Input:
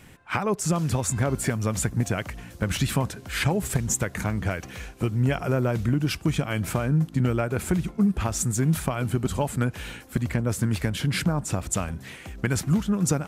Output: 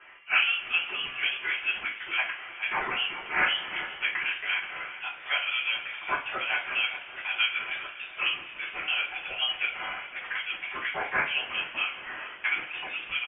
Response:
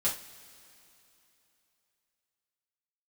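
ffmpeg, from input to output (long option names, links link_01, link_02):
-filter_complex "[0:a]highpass=frequency=850:width=0.5412,highpass=frequency=850:width=1.3066[link_01];[1:a]atrim=start_sample=2205[link_02];[link_01][link_02]afir=irnorm=-1:irlink=0,lowpass=frequency=3200:width_type=q:width=0.5098,lowpass=frequency=3200:width_type=q:width=0.6013,lowpass=frequency=3200:width_type=q:width=0.9,lowpass=frequency=3200:width_type=q:width=2.563,afreqshift=-3800,asplit=2[link_03][link_04];[link_04]adelay=412,lowpass=frequency=1400:poles=1,volume=-11dB,asplit=2[link_05][link_06];[link_06]adelay=412,lowpass=frequency=1400:poles=1,volume=0.5,asplit=2[link_07][link_08];[link_08]adelay=412,lowpass=frequency=1400:poles=1,volume=0.5,asplit=2[link_09][link_10];[link_10]adelay=412,lowpass=frequency=1400:poles=1,volume=0.5,asplit=2[link_11][link_12];[link_12]adelay=412,lowpass=frequency=1400:poles=1,volume=0.5[link_13];[link_03][link_05][link_07][link_09][link_11][link_13]amix=inputs=6:normalize=0"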